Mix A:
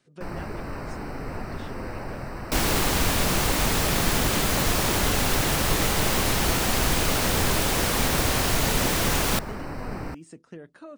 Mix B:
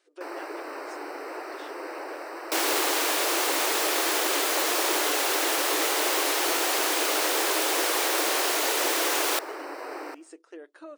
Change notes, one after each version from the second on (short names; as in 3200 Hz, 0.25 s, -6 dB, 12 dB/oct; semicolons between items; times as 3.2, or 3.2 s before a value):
first sound: send on; master: add brick-wall FIR high-pass 290 Hz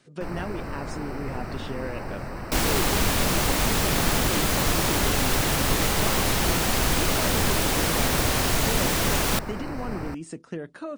speech +8.0 dB; first sound: send -10.0 dB; master: remove brick-wall FIR high-pass 290 Hz